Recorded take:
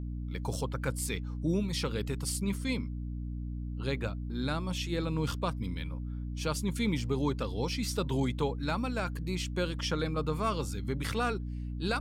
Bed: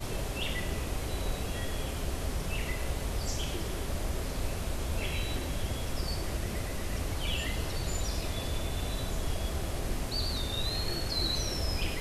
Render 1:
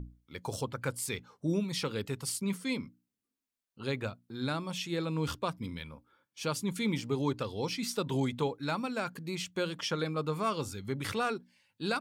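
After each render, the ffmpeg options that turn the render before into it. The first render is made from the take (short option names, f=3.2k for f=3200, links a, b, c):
-af "bandreject=f=60:t=h:w=6,bandreject=f=120:t=h:w=6,bandreject=f=180:t=h:w=6,bandreject=f=240:t=h:w=6,bandreject=f=300:t=h:w=6"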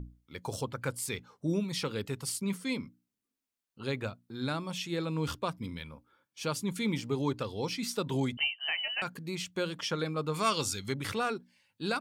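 -filter_complex "[0:a]asettb=1/sr,asplit=3[a][b][c];[a]atrim=end=8.374[d];[b]atrim=start=8.37:end=9.02,asetpts=PTS-STARTPTS,afade=t=in:d=0.004:c=qsin,afade=t=out:st=0.646:d=0.004:c=qsin,lowpass=f=2.7k:t=q:w=0.5098,lowpass=f=2.7k:t=q:w=0.6013,lowpass=f=2.7k:t=q:w=0.9,lowpass=f=2.7k:t=q:w=2.563,afreqshift=-3200[e];[c]atrim=start=9.016[f];[d][e]acrossfade=d=0.004:c1=hsin:c2=qsin[g];[g][f]acrossfade=d=0.004:c1=qsin:c2=hsin,asettb=1/sr,asplit=3[h][i][j];[h]atrim=end=10.344[k];[i]atrim=start=10.34:end=10.94,asetpts=PTS-STARTPTS,afade=t=in:d=0.004:c=qsin,afade=t=out:st=0.596:d=0.004:c=qsin,equalizer=f=5.9k:w=0.33:g=12[l];[j]atrim=start=10.936[m];[k][l]acrossfade=d=0.004:c1=hsin:c2=qsin[n];[n][m]acrossfade=d=0.004:c1=qsin:c2=hsin"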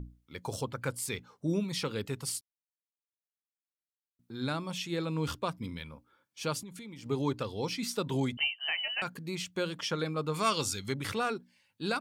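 -filter_complex "[0:a]asettb=1/sr,asplit=3[a][b][c];[a]atrim=end=6.614[d];[b]atrim=start=6.61:end=7.06,asetpts=PTS-STARTPTS,afade=t=in:d=0.004:c=qsin,afade=t=out:st=0.446:d=0.004:c=qsin,acompressor=threshold=-42dB:ratio=12:attack=3.2:release=140:knee=1:detection=peak[e];[c]atrim=start=7.056[f];[d][e]acrossfade=d=0.004:c1=hsin:c2=qsin[g];[g][f]acrossfade=d=0.004:c1=qsin:c2=hsin,asplit=3[h][i][j];[h]atrim=end=2.41,asetpts=PTS-STARTPTS,afade=t=out:st=2.406:d=0.004:c=hsin[k];[i]atrim=start=2.41:end=4.19,asetpts=PTS-STARTPTS,volume=0[l];[j]atrim=start=4.19,asetpts=PTS-STARTPTS,afade=t=in:d=0.004:c=hsin[m];[k][l][m]concat=n=3:v=0:a=1"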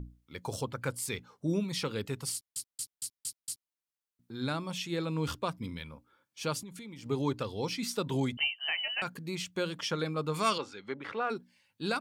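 -filter_complex "[0:a]asplit=3[a][b][c];[a]afade=t=out:st=10.57:d=0.02[d];[b]highpass=330,lowpass=2k,afade=t=in:st=10.57:d=0.02,afade=t=out:st=11.29:d=0.02[e];[c]afade=t=in:st=11.29:d=0.02[f];[d][e][f]amix=inputs=3:normalize=0,asplit=7[g][h][i][j][k][l][m];[g]atrim=end=2.562[n];[h]atrim=start=2.328:end=2.562[o];[i]atrim=start=2.328:end=2.562[p];[j]atrim=start=2.328:end=2.562[q];[k]atrim=start=2.328:end=2.562[r];[l]atrim=start=2.328:end=2.562[s];[m]atrim=start=3.708[t];[n][o]acrossfade=d=0.004:c1=hsin:c2=hsin[u];[u][p]acrossfade=d=0.004:c1=hsin:c2=hsin[v];[v][q]acrossfade=d=0.004:c1=hsin:c2=hsin[w];[w][r]acrossfade=d=0.004:c1=hsin:c2=hsin[x];[x][s]acrossfade=d=0.004:c1=hsin:c2=hsin[y];[y][t]acrossfade=d=0.004:c1=hsin:c2=hsin"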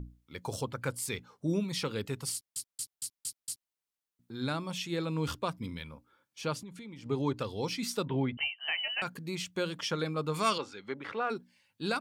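-filter_complex "[0:a]asettb=1/sr,asplit=3[a][b][c];[a]atrim=end=6.414[d];[b]atrim=start=6.41:end=7.37,asetpts=PTS-STARTPTS,afade=t=in:d=0.004:c=qsin,afade=t=out:st=0.956:d=0.004:c=qsin,lowpass=f=3.9k:p=1[e];[c]atrim=start=7.366[f];[d][e]acrossfade=d=0.004:c1=hsin:c2=qsin[g];[g][f]acrossfade=d=0.004:c1=qsin:c2=hsin,asettb=1/sr,asplit=3[h][i][j];[h]atrim=end=8.054[k];[i]atrim=start=8.05:end=8.68,asetpts=PTS-STARTPTS,afade=t=in:d=0.004:c=qsin,afade=t=out:st=0.626:d=0.004:c=qsin,lowpass=f=2.8k:w=0.5412,lowpass=f=2.8k:w=1.3066[l];[j]atrim=start=8.676[m];[k][l]acrossfade=d=0.004:c1=hsin:c2=qsin[n];[n][m]acrossfade=d=0.004:c1=qsin:c2=hsin"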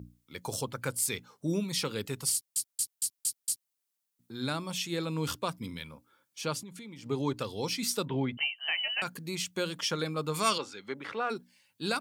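-af "highpass=93,highshelf=f=5.1k:g=9.5"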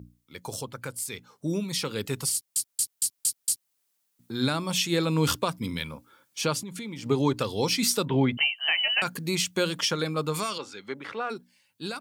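-af "alimiter=limit=-22dB:level=0:latency=1:release=287,dynaudnorm=f=200:g=21:m=9dB"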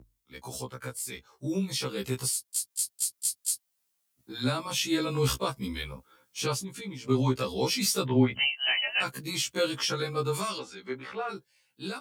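-af "afreqshift=-14,afftfilt=real='re*1.73*eq(mod(b,3),0)':imag='im*1.73*eq(mod(b,3),0)':win_size=2048:overlap=0.75"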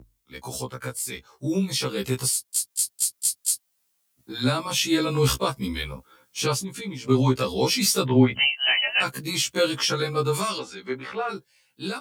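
-af "volume=5.5dB"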